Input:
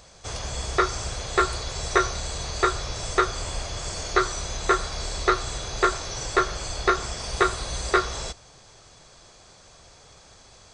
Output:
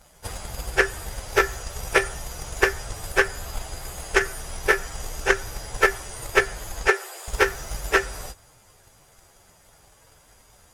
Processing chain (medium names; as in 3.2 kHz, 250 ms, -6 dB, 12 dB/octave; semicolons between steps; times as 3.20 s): frequency axis rescaled in octaves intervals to 114%; transient shaper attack +8 dB, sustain +1 dB; 6.88–7.28 s: Chebyshev high-pass 340 Hz, order 8; loudspeaker Doppler distortion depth 0.24 ms